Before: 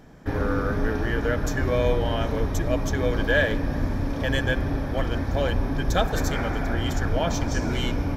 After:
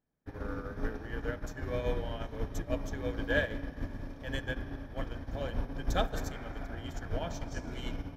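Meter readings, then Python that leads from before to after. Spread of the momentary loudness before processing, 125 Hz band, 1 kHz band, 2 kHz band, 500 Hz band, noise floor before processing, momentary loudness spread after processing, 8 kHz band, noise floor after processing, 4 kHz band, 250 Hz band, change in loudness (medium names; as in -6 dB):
5 LU, -13.0 dB, -12.0 dB, -11.0 dB, -11.5 dB, -29 dBFS, 9 LU, -13.5 dB, -47 dBFS, -12.0 dB, -12.5 dB, -12.0 dB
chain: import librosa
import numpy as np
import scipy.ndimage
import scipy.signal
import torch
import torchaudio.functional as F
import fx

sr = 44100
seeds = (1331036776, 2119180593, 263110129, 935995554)

y = fx.rev_spring(x, sr, rt60_s=3.2, pass_ms=(36,), chirp_ms=25, drr_db=9.5)
y = fx.upward_expand(y, sr, threshold_db=-37.0, expansion=2.5)
y = y * librosa.db_to_amplitude(-6.5)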